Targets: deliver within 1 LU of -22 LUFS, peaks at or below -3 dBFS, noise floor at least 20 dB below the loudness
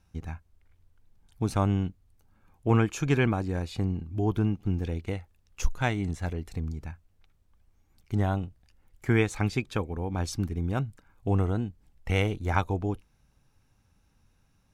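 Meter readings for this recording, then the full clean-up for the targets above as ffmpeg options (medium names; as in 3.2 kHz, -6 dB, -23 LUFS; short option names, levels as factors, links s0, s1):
loudness -29.5 LUFS; peak level -9.0 dBFS; loudness target -22.0 LUFS
-> -af "volume=2.37,alimiter=limit=0.708:level=0:latency=1"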